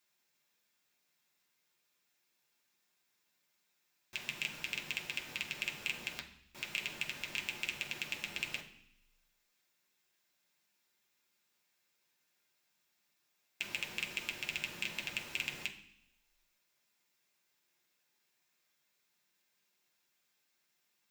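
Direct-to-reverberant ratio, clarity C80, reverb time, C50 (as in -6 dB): -0.5 dB, 13.5 dB, 0.65 s, 10.5 dB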